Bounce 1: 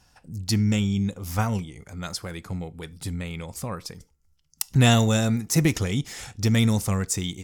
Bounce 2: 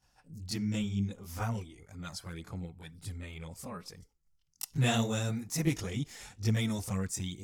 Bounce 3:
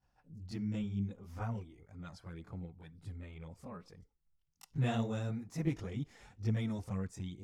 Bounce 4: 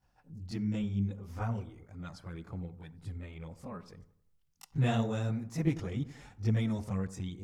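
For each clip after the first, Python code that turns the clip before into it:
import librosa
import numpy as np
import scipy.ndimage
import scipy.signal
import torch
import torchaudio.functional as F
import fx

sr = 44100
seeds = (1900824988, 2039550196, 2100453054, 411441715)

y1 = fx.chorus_voices(x, sr, voices=2, hz=1.0, base_ms=22, depth_ms=3.5, mix_pct=70)
y1 = F.gain(torch.from_numpy(y1), -7.5).numpy()
y2 = fx.lowpass(y1, sr, hz=1300.0, slope=6)
y2 = F.gain(torch.from_numpy(y2), -4.0).numpy()
y3 = fx.echo_wet_lowpass(y2, sr, ms=90, feedback_pct=41, hz=1500.0, wet_db=-15.0)
y3 = F.gain(torch.from_numpy(y3), 4.0).numpy()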